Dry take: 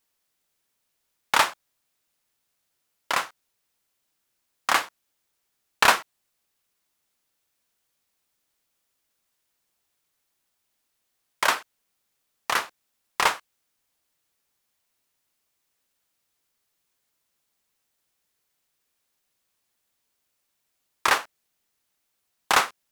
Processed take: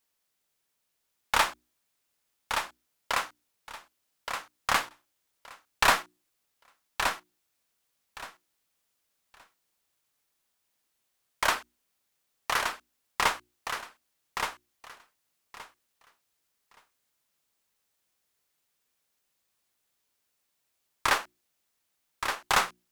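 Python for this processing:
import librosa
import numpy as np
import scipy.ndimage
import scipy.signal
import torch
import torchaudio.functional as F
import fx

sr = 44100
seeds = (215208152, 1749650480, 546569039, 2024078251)

y = fx.diode_clip(x, sr, knee_db=-13.0)
y = fx.hum_notches(y, sr, base_hz=60, count=6)
y = fx.echo_feedback(y, sr, ms=1172, feedback_pct=19, wet_db=-6.0)
y = F.gain(torch.from_numpy(y), -2.5).numpy()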